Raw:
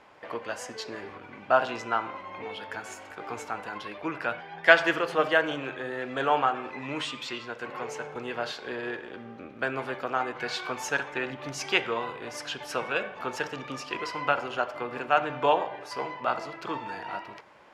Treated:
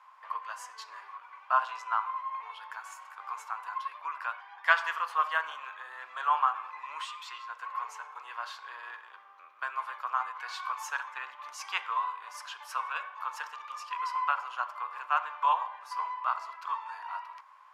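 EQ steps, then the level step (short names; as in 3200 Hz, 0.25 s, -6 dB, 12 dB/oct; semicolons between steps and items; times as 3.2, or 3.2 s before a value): ladder high-pass 1000 Hz, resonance 80%; high shelf 9200 Hz +11.5 dB; +2.0 dB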